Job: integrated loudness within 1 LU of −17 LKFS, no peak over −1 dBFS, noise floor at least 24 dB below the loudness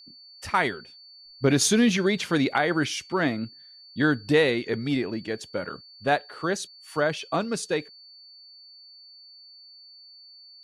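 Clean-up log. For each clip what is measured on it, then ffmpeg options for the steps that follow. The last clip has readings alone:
interfering tone 4,500 Hz; level of the tone −47 dBFS; integrated loudness −25.5 LKFS; sample peak −10.0 dBFS; target loudness −17.0 LKFS
→ -af "bandreject=frequency=4500:width=30"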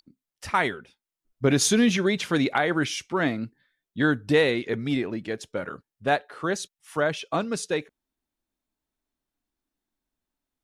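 interfering tone none found; integrated loudness −25.5 LKFS; sample peak −10.0 dBFS; target loudness −17.0 LKFS
→ -af "volume=8.5dB"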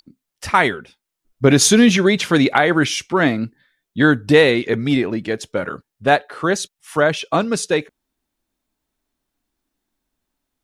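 integrated loudness −17.0 LKFS; sample peak −1.5 dBFS; background noise floor −81 dBFS

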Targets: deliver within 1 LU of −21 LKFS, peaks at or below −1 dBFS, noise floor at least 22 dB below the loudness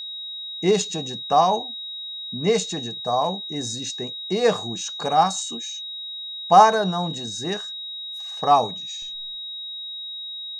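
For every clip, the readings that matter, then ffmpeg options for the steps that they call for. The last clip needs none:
interfering tone 3,800 Hz; level of the tone −31 dBFS; integrated loudness −23.5 LKFS; sample peak −2.5 dBFS; target loudness −21.0 LKFS
→ -af "bandreject=frequency=3800:width=30"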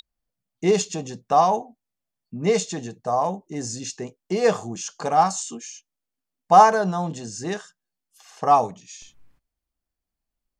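interfering tone none found; integrated loudness −22.0 LKFS; sample peak −2.5 dBFS; target loudness −21.0 LKFS
→ -af "volume=1dB"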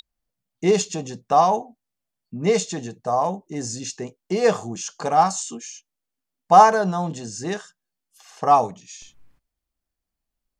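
integrated loudness −21.0 LKFS; sample peak −1.5 dBFS; background noise floor −83 dBFS

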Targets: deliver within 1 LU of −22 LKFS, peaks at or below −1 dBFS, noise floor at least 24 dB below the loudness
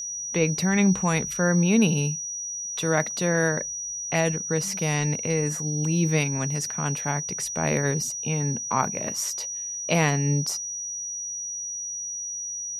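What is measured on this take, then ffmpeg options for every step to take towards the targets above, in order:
interfering tone 5,800 Hz; level of the tone −30 dBFS; integrated loudness −25.0 LKFS; sample peak −8.0 dBFS; target loudness −22.0 LKFS
→ -af "bandreject=frequency=5800:width=30"
-af "volume=3dB"

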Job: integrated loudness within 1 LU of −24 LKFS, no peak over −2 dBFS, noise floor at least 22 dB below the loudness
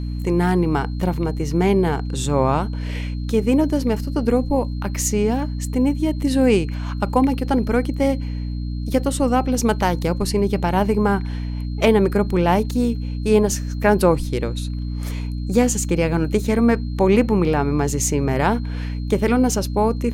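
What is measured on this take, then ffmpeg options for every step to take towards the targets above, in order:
mains hum 60 Hz; hum harmonics up to 300 Hz; level of the hum −23 dBFS; interfering tone 4,200 Hz; level of the tone −48 dBFS; integrated loudness −20.5 LKFS; sample peak −2.0 dBFS; target loudness −24.0 LKFS
→ -af "bandreject=frequency=60:width_type=h:width=6,bandreject=frequency=120:width_type=h:width=6,bandreject=frequency=180:width_type=h:width=6,bandreject=frequency=240:width_type=h:width=6,bandreject=frequency=300:width_type=h:width=6"
-af "bandreject=frequency=4200:width=30"
-af "volume=-3.5dB"

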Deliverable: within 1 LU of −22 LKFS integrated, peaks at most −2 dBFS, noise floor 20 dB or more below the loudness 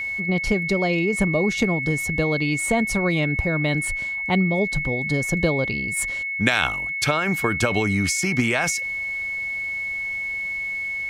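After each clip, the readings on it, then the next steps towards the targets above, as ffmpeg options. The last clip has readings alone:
interfering tone 2,200 Hz; level of the tone −25 dBFS; integrated loudness −22.0 LKFS; sample peak −3.5 dBFS; target loudness −22.0 LKFS
→ -af "bandreject=frequency=2200:width=30"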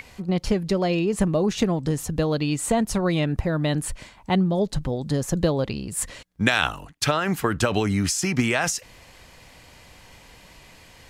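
interfering tone none found; integrated loudness −24.0 LKFS; sample peak −4.5 dBFS; target loudness −22.0 LKFS
→ -af "volume=2dB"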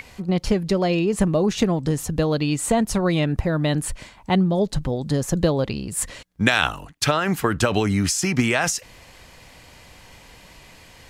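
integrated loudness −22.0 LKFS; sample peak −2.5 dBFS; background noise floor −48 dBFS

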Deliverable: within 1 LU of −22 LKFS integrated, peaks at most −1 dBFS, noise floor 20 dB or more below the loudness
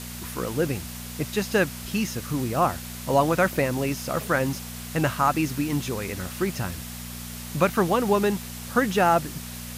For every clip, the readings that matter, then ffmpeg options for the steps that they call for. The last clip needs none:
mains hum 60 Hz; hum harmonics up to 240 Hz; level of the hum −37 dBFS; background noise floor −37 dBFS; target noise floor −46 dBFS; integrated loudness −25.5 LKFS; sample peak −7.0 dBFS; target loudness −22.0 LKFS
→ -af "bandreject=frequency=60:width_type=h:width=4,bandreject=frequency=120:width_type=h:width=4,bandreject=frequency=180:width_type=h:width=4,bandreject=frequency=240:width_type=h:width=4"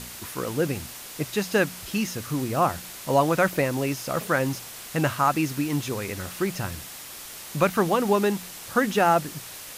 mains hum none found; background noise floor −40 dBFS; target noise floor −46 dBFS
→ -af "afftdn=noise_reduction=6:noise_floor=-40"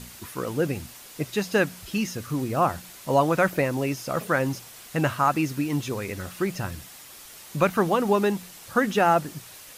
background noise floor −46 dBFS; integrated loudness −25.5 LKFS; sample peak −8.0 dBFS; target loudness −22.0 LKFS
→ -af "volume=3.5dB"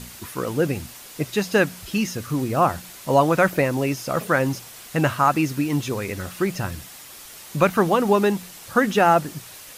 integrated loudness −22.0 LKFS; sample peak −4.5 dBFS; background noise floor −42 dBFS

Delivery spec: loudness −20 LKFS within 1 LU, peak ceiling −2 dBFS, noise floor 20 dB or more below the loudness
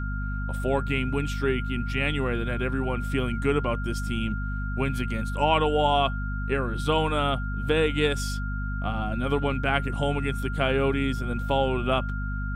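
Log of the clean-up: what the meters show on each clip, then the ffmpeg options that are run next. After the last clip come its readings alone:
mains hum 50 Hz; hum harmonics up to 250 Hz; level of the hum −27 dBFS; interfering tone 1,400 Hz; level of the tone −36 dBFS; integrated loudness −26.5 LKFS; sample peak −7.5 dBFS; target loudness −20.0 LKFS
→ -af "bandreject=frequency=50:width_type=h:width=6,bandreject=frequency=100:width_type=h:width=6,bandreject=frequency=150:width_type=h:width=6,bandreject=frequency=200:width_type=h:width=6,bandreject=frequency=250:width_type=h:width=6"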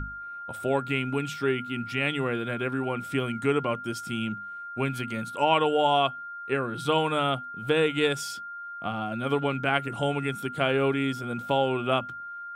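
mains hum none found; interfering tone 1,400 Hz; level of the tone −36 dBFS
→ -af "bandreject=frequency=1400:width=30"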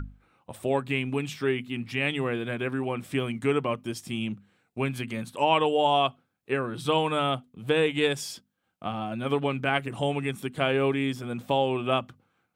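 interfering tone none found; integrated loudness −28.0 LKFS; sample peak −8.5 dBFS; target loudness −20.0 LKFS
→ -af "volume=8dB,alimiter=limit=-2dB:level=0:latency=1"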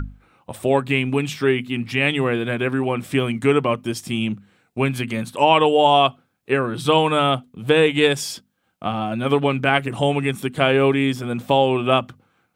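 integrated loudness −20.0 LKFS; sample peak −2.0 dBFS; background noise floor −69 dBFS

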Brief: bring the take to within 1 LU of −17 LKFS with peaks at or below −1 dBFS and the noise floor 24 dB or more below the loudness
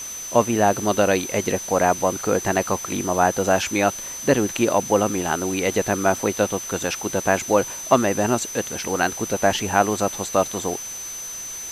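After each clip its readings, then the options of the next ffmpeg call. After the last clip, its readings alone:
interfering tone 6,100 Hz; level of the tone −31 dBFS; background noise floor −33 dBFS; target noise floor −46 dBFS; integrated loudness −21.5 LKFS; sample peak −1.5 dBFS; target loudness −17.0 LKFS
→ -af "bandreject=frequency=6100:width=30"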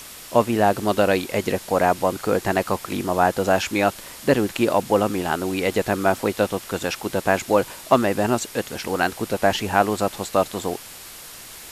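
interfering tone none found; background noise floor −40 dBFS; target noise floor −46 dBFS
→ -af "afftdn=noise_reduction=6:noise_floor=-40"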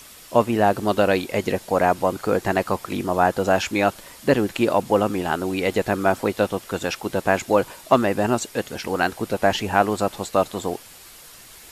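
background noise floor −45 dBFS; target noise floor −46 dBFS
→ -af "afftdn=noise_reduction=6:noise_floor=-45"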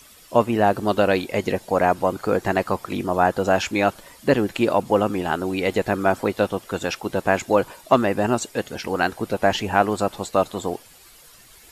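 background noise floor −49 dBFS; integrated loudness −22.0 LKFS; sample peak −1.5 dBFS; target loudness −17.0 LKFS
→ -af "volume=5dB,alimiter=limit=-1dB:level=0:latency=1"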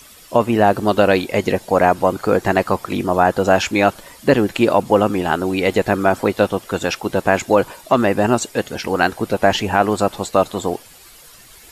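integrated loudness −17.5 LKFS; sample peak −1.0 dBFS; background noise floor −44 dBFS

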